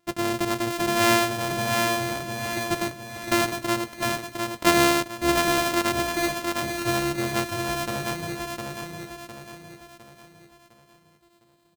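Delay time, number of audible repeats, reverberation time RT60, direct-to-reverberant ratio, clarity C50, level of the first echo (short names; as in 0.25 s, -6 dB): 0.707 s, 5, none, none, none, -4.0 dB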